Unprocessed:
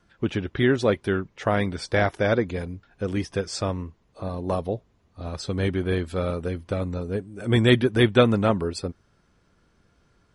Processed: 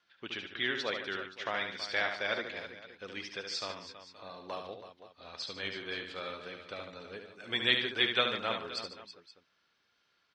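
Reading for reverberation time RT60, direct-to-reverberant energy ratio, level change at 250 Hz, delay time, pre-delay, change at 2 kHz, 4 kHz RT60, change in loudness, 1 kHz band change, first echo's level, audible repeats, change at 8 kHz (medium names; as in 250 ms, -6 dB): no reverb, no reverb, -20.5 dB, 72 ms, no reverb, -4.0 dB, no reverb, -9.5 dB, -9.0 dB, -6.5 dB, 4, -10.5 dB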